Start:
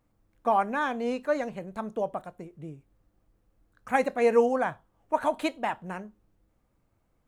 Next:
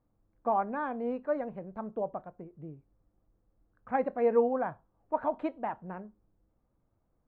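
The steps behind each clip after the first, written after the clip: LPF 1200 Hz 12 dB/oct; gain -3.5 dB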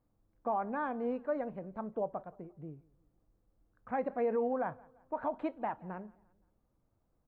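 limiter -23 dBFS, peak gain reduction 7.5 dB; feedback echo 0.173 s, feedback 42%, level -24 dB; gain -1.5 dB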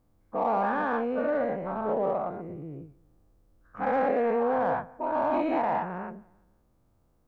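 spectral dilation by 0.24 s; in parallel at -8 dB: soft clip -29 dBFS, distortion -11 dB

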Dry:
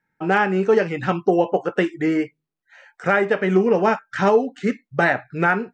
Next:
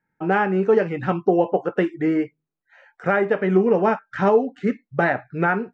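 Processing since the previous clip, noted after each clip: LPF 1500 Hz 6 dB/oct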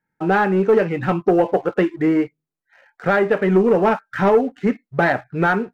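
sample leveller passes 1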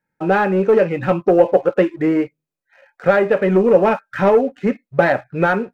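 small resonant body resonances 550/2500 Hz, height 10 dB

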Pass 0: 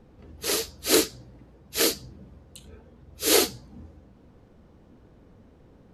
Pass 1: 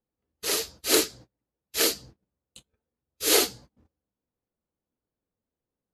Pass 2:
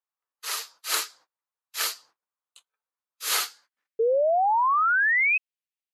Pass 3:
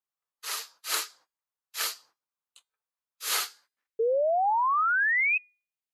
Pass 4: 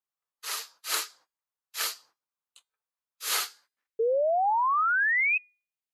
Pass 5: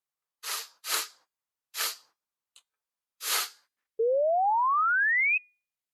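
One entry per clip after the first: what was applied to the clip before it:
low shelf 310 Hz -7.5 dB; gate -46 dBFS, range -31 dB
high-pass sweep 1100 Hz -> 2500 Hz, 3.31–4.17; painted sound rise, 3.99–5.38, 440–2600 Hz -17 dBFS; gain -4.5 dB
resonator 410 Hz, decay 0.38 s, harmonics all, mix 30%
nothing audible
Opus 192 kbps 48000 Hz

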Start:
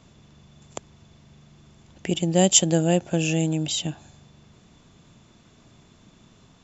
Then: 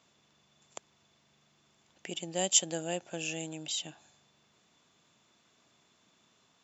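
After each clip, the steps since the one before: HPF 800 Hz 6 dB/oct; gain -7.5 dB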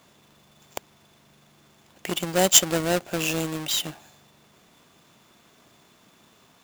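half-waves squared off; gain +6.5 dB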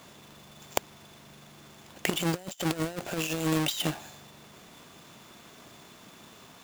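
negative-ratio compressor -30 dBFS, ratio -0.5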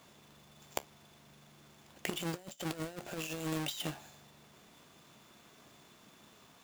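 resonator 71 Hz, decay 0.16 s, harmonics all, mix 50%; gain -6 dB

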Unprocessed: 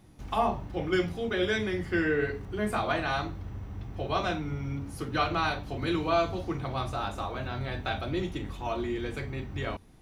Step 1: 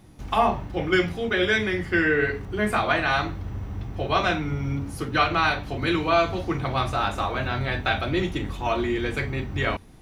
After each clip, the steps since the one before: dynamic EQ 2000 Hz, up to +6 dB, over -45 dBFS, Q 0.97; in parallel at -2.5 dB: vocal rider within 4 dB 0.5 s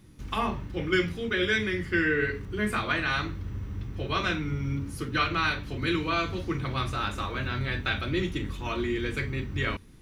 bell 730 Hz -13.5 dB 0.66 oct; gain -2.5 dB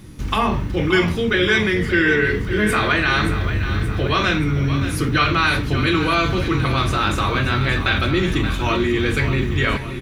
in parallel at -2.5 dB: negative-ratio compressor -33 dBFS; on the sum: feedback echo 0.576 s, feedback 56%, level -10.5 dB; gain +7 dB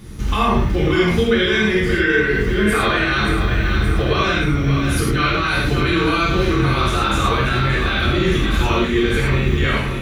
limiter -13.5 dBFS, peak gain reduction 9.5 dB; non-linear reverb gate 0.13 s flat, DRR -3.5 dB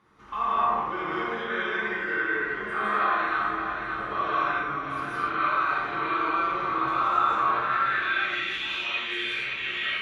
band-pass sweep 1100 Hz -> 2800 Hz, 7.49–8.44; digital reverb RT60 0.97 s, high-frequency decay 0.5×, pre-delay 0.12 s, DRR -6 dB; gain -7 dB

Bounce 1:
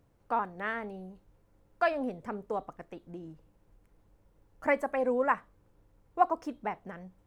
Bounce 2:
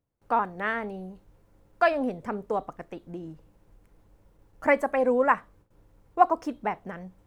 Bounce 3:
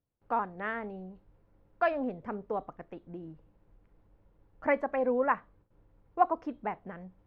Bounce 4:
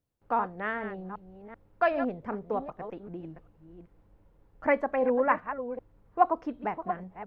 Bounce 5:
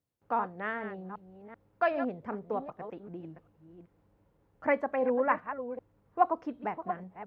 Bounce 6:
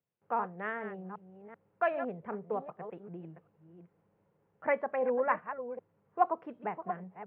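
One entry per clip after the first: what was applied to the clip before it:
gate with hold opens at -56 dBFS; gain +5.5 dB
air absorption 270 m; gain -4.5 dB
reverse delay 0.386 s, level -10 dB; gain +2.5 dB
HPF 78 Hz 12 dB/oct; gain -2.5 dB
speaker cabinet 140–2900 Hz, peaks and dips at 170 Hz +5 dB, 280 Hz -9 dB, 420 Hz +3 dB; gain -2 dB

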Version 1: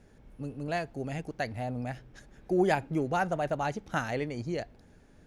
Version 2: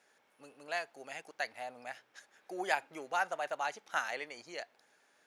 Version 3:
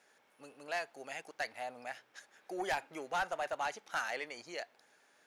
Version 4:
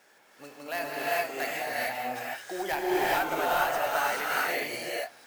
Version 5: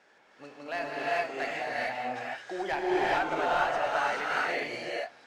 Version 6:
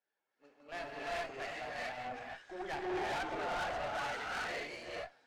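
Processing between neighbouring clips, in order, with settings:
HPF 900 Hz 12 dB/oct
soft clip -29 dBFS, distortion -11 dB; gain +1.5 dB
in parallel at +1.5 dB: limiter -37.5 dBFS, peak gain reduction 10 dB; on the sum: sample-and-hold 3×; non-linear reverb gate 0.46 s rising, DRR -6.5 dB
air absorption 120 m
bin magnitudes rounded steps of 15 dB; tube stage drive 32 dB, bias 0.65; three-band expander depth 70%; gain -2.5 dB

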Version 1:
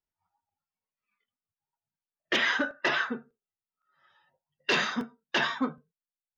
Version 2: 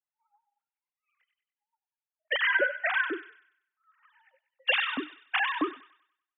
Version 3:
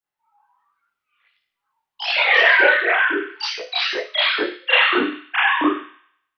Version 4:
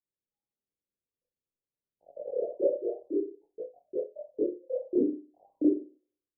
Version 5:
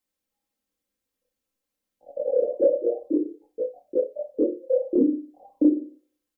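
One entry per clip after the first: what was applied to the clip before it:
sine-wave speech; thin delay 96 ms, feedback 40%, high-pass 2400 Hz, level -3.5 dB
reverb, pre-delay 30 ms, DRR -8 dB; echoes that change speed 0.207 s, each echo +3 st, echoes 3; gain +2 dB
steep low-pass 570 Hz 72 dB/oct; gain -4 dB
comb 3.8 ms, depth 78%; compressor 2:1, threshold -28 dBFS, peak gain reduction 7.5 dB; gain +8.5 dB

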